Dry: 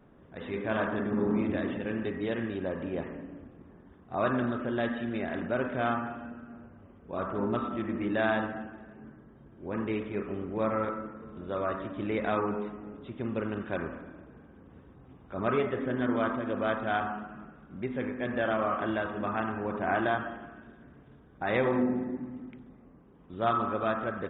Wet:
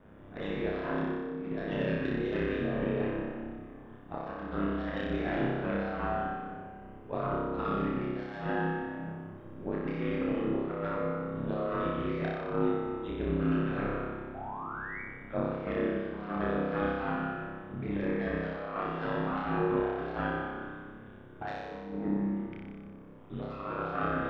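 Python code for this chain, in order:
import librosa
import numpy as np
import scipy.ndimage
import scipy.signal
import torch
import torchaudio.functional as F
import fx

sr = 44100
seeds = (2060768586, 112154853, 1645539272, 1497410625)

y = fx.self_delay(x, sr, depth_ms=0.11)
y = fx.comb(y, sr, ms=3.7, depth=0.64, at=(8.49, 10.55))
y = fx.over_compress(y, sr, threshold_db=-34.0, ratio=-0.5)
y = fx.spec_paint(y, sr, seeds[0], shape='rise', start_s=14.34, length_s=0.68, low_hz=700.0, high_hz=2300.0, level_db=-42.0)
y = y * np.sin(2.0 * np.pi * 51.0 * np.arange(len(y)) / sr)
y = fx.room_flutter(y, sr, wall_m=5.2, rt60_s=1.3)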